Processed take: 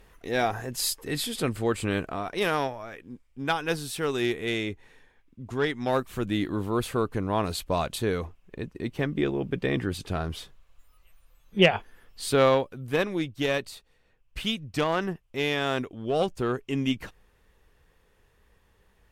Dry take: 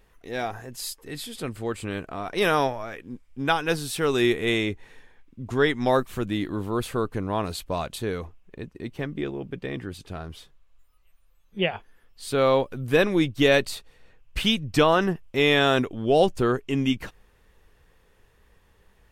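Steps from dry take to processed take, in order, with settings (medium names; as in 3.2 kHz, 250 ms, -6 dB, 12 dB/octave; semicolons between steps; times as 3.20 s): Chebyshev shaper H 4 -15 dB, 6 -21 dB, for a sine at -6 dBFS; gain riding 0.5 s; trim -4 dB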